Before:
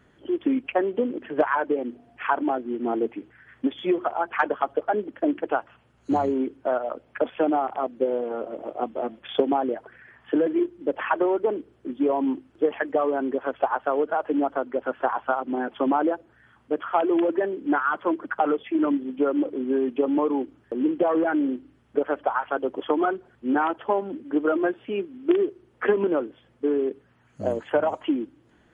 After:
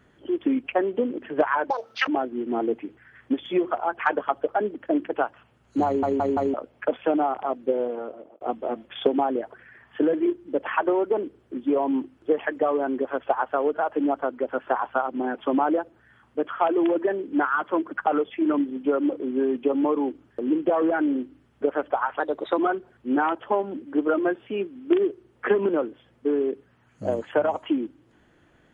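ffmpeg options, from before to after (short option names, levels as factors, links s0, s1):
-filter_complex "[0:a]asplit=10[s0][s1][s2][s3][s4][s5][s6][s7][s8][s9];[s0]atrim=end=1.704[s10];[s1]atrim=start=1.7:end=2.41,asetpts=PTS-STARTPTS,asetrate=82908,aresample=44100[s11];[s2]atrim=start=2.406:end=6.362[s12];[s3]atrim=start=6.188:end=6.362[s13];[s4]atrim=start=6.188:end=6.362[s14];[s5]atrim=start=6.188:end=6.362[s15];[s6]atrim=start=6.868:end=8.74,asetpts=PTS-STARTPTS,afade=t=out:st=1.322:d=0.55[s16];[s7]atrim=start=8.74:end=22.534,asetpts=PTS-STARTPTS,afade=t=in:d=0.004:c=hsin[s17];[s8]atrim=start=22.53:end=22.96,asetpts=PTS-STARTPTS,asetrate=49833,aresample=44100,atrim=end_sample=16781,asetpts=PTS-STARTPTS[s18];[s9]atrim=start=22.956[s19];[s10][s11]acrossfade=d=0.004:c1=hsin:c2=hsin[s20];[s20][s12]acrossfade=d=0.004:c1=hsin:c2=hsin[s21];[s21][s13]acrossfade=d=0.004:c1=hsin:c2=hsin[s22];[s22][s14]acrossfade=d=0.004:c1=hsin:c2=hsin[s23];[s23][s15]acrossfade=d=0.004:c1=hsin:c2=hsin[s24];[s16][s17]concat=n=2:v=0:a=1[s25];[s24][s25]acrossfade=d=0.004:c1=hsin:c2=hsin[s26];[s26][s18]acrossfade=d=0.004:c1=hsin:c2=hsin[s27];[s27][s19]acrossfade=d=0.004:c1=hsin:c2=hsin"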